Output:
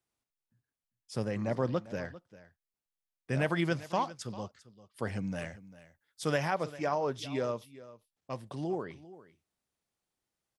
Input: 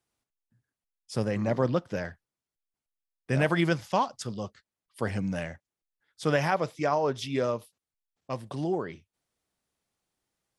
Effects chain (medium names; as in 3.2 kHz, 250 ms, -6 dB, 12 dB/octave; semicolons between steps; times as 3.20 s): 5.39–6.38 s: treble shelf 6 kHz +10.5 dB; on a send: delay 397 ms -17.5 dB; on the sum: trim -5 dB